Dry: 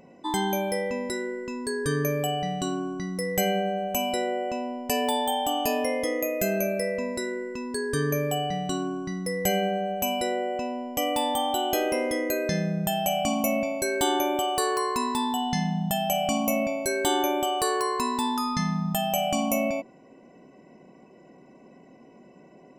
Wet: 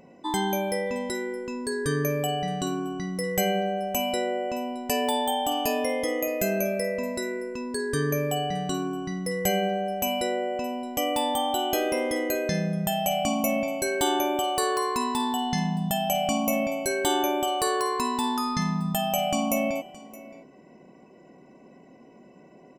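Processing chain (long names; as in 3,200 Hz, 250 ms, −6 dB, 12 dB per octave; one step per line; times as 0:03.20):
single-tap delay 619 ms −19.5 dB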